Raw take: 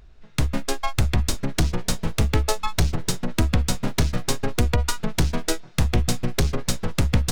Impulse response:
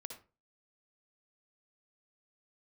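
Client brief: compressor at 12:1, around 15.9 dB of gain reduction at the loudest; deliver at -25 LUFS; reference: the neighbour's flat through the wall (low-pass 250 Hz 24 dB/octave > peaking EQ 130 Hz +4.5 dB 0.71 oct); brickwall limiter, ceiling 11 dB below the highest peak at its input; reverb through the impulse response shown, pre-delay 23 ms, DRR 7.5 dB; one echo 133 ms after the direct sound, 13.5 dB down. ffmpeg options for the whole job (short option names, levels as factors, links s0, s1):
-filter_complex "[0:a]acompressor=threshold=0.0316:ratio=12,alimiter=level_in=1.19:limit=0.0631:level=0:latency=1,volume=0.841,aecho=1:1:133:0.211,asplit=2[s0][s1];[1:a]atrim=start_sample=2205,adelay=23[s2];[s1][s2]afir=irnorm=-1:irlink=0,volume=0.668[s3];[s0][s3]amix=inputs=2:normalize=0,lowpass=f=250:w=0.5412,lowpass=f=250:w=1.3066,equalizer=f=130:t=o:w=0.71:g=4.5,volume=6.31"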